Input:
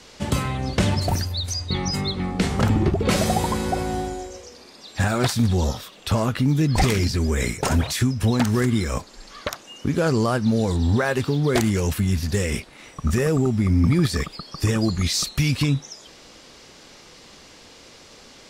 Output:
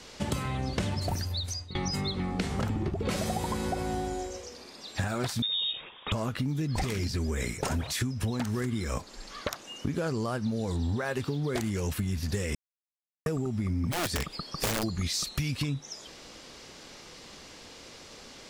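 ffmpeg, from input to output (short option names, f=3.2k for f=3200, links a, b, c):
-filter_complex "[0:a]asettb=1/sr,asplit=3[a][b][c];[a]atrim=end=5.424[d];[b]atrim=start=5.42:end=6.12,asetpts=PTS-STARTPTS,afade=t=in:d=0.004:c=qsin,afade=t=out:st=0.696:d=0.004:c=qsin,lowpass=f=3.2k:t=q:w=0.5098,lowpass=f=3.2k:t=q:w=0.6013,lowpass=f=3.2k:t=q:w=0.9,lowpass=f=3.2k:t=q:w=2.563,afreqshift=-3800[e];[c]atrim=start=6.116[f];[d][e]acrossfade=d=0.004:c1=hsin:c2=qsin[g];[g][f]acrossfade=d=0.004:c1=qsin:c2=hsin,asplit=3[h][i][j];[h]afade=t=out:st=13.91:d=0.02[k];[i]aeval=exprs='(mod(6.31*val(0)+1,2)-1)/6.31':c=same,afade=t=in:st=13.91:d=0.02,afade=t=out:st=14.82:d=0.02[l];[j]afade=t=in:st=14.82:d=0.02[m];[k][l][m]amix=inputs=3:normalize=0,asplit=4[n][o][p][q];[n]atrim=end=1.75,asetpts=PTS-STARTPTS,afade=t=out:st=1.26:d=0.49:silence=0.1[r];[o]atrim=start=1.75:end=12.55,asetpts=PTS-STARTPTS,afade=t=in:d=0.004:c=hsin:silence=0.1,afade=t=out:st=10.796:d=0.004:c=hsin[s];[p]atrim=start=12.55:end=13.26,asetpts=PTS-STARTPTS,volume=0[t];[q]atrim=start=13.26,asetpts=PTS-STARTPTS,afade=t=in:d=0.004:c=hsin[u];[r][s][t][u]concat=n=4:v=0:a=1,acompressor=threshold=-26dB:ratio=6,volume=-1.5dB"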